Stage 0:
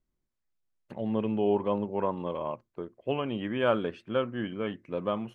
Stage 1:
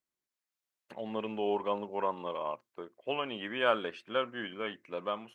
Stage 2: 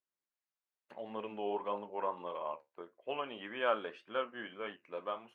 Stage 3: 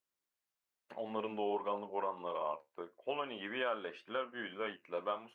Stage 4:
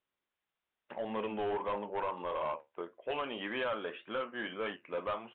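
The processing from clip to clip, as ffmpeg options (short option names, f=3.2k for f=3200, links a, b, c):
-af "highpass=f=1.1k:p=1,dynaudnorm=f=140:g=7:m=3.5dB"
-af "lowshelf=f=330:g=-11,flanger=delay=9.9:depth=4.1:regen=-64:speed=1.7:shape=triangular,highshelf=f=2.6k:g=-11.5,volume=3.5dB"
-af "alimiter=level_in=4dB:limit=-24dB:level=0:latency=1:release=307,volume=-4dB,volume=3dB"
-af "asoftclip=type=tanh:threshold=-34.5dB,aresample=8000,aresample=44100,volume=5.5dB"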